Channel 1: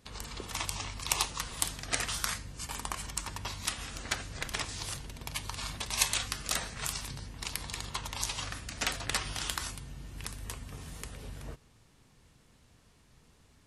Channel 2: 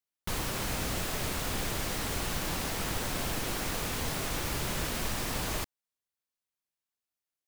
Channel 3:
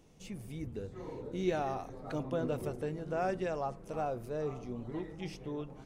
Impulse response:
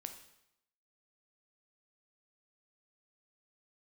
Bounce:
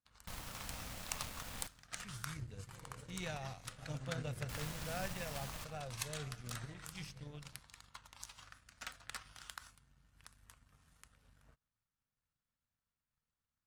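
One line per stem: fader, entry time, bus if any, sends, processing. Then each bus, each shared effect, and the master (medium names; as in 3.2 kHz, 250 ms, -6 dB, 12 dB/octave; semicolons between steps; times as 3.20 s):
-10.5 dB, 0.00 s, no send, peaking EQ 1.4 kHz +8 dB 0.59 oct
-9.5 dB, 0.00 s, muted 1.67–4.49 s, send -3 dB, none
-0.5 dB, 1.75 s, no send, graphic EQ 125/250/1000/2000/4000/8000 Hz +10/-7/-8/+6/+5/+9 dB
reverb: on, RT60 0.80 s, pre-delay 7 ms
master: peaking EQ 370 Hz -13 dB 0.47 oct; power-law waveshaper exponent 1.4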